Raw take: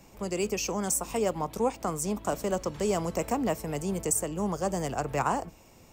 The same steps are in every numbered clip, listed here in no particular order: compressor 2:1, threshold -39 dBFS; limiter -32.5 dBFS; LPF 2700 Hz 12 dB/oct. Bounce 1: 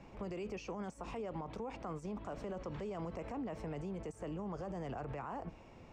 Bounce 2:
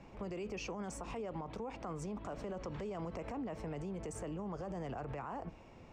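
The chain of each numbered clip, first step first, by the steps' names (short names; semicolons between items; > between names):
limiter > LPF > compressor; LPF > limiter > compressor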